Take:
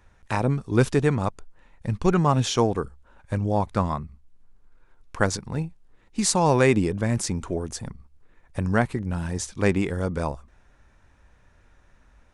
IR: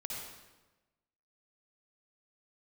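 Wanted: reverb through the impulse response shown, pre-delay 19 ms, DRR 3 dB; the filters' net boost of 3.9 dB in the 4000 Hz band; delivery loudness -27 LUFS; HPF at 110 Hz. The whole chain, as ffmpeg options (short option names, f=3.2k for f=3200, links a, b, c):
-filter_complex "[0:a]highpass=110,equalizer=f=4k:t=o:g=5,asplit=2[a][b];[1:a]atrim=start_sample=2205,adelay=19[c];[b][c]afir=irnorm=-1:irlink=0,volume=-3.5dB[d];[a][d]amix=inputs=2:normalize=0,volume=-4dB"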